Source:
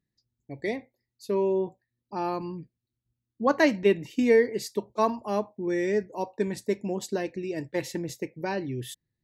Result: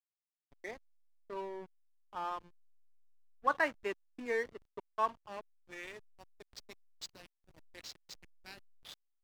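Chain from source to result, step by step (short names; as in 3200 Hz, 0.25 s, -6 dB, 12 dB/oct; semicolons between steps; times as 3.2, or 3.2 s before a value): band-pass sweep 1300 Hz -> 4500 Hz, 4.95–6.23; dynamic EQ 2900 Hz, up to +4 dB, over -58 dBFS, Q 3; backlash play -40 dBFS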